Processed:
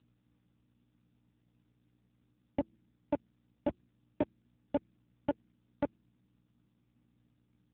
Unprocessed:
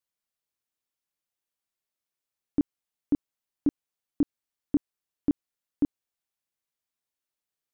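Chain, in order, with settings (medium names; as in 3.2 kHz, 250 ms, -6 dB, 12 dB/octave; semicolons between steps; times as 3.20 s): one-sided wavefolder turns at -24.5 dBFS; 2.59–3.13 s: Bessel low-pass 790 Hz, order 2; de-hum 109.4 Hz, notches 3; 5.29–5.83 s: band-stop 460 Hz, Q 12; dynamic bell 320 Hz, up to -5 dB, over -42 dBFS, Q 2.6; harmonic-percussive split harmonic -10 dB; compression 4:1, threshold -28 dBFS, peak gain reduction 5.5 dB; 3.68–4.22 s: frequency shift +26 Hz; hum 60 Hz, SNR 26 dB; trim +4 dB; AMR-NB 7.4 kbps 8 kHz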